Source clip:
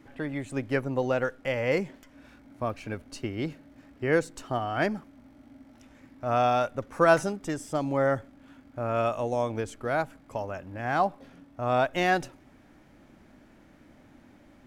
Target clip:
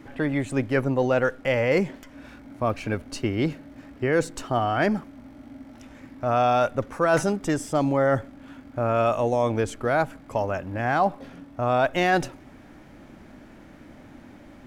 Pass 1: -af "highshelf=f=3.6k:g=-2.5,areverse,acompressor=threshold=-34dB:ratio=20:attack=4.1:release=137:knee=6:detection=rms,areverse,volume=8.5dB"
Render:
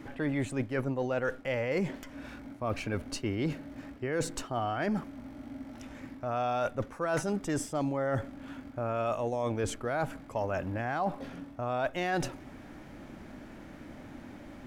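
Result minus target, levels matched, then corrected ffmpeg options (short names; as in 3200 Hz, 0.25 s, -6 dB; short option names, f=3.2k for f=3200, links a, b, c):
compressor: peak gain reduction +10.5 dB
-af "highshelf=f=3.6k:g=-2.5,areverse,acompressor=threshold=-23dB:ratio=20:attack=4.1:release=137:knee=6:detection=rms,areverse,volume=8.5dB"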